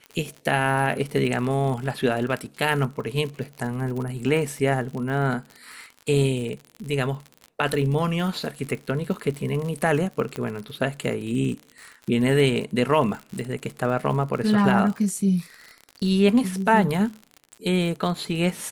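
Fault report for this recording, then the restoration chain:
surface crackle 59 per second −31 dBFS
0:10.36: click −17 dBFS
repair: click removal

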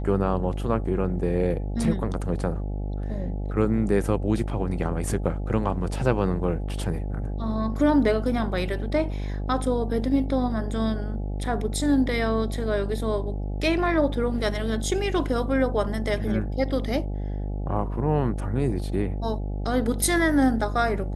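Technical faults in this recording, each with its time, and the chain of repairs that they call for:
mains buzz 50 Hz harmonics 17 −29 dBFS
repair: hum removal 50 Hz, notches 17

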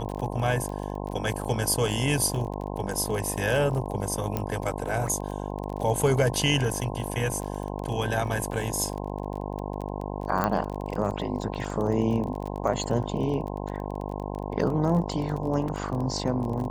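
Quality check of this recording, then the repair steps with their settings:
mains buzz 50 Hz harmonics 21 −33 dBFS
surface crackle 26 per second −32 dBFS
0:04.37: click −13 dBFS
0:10.44: click −12 dBFS
0:15.68: drop-out 3.6 ms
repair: click removal
hum removal 50 Hz, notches 21
repair the gap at 0:15.68, 3.6 ms

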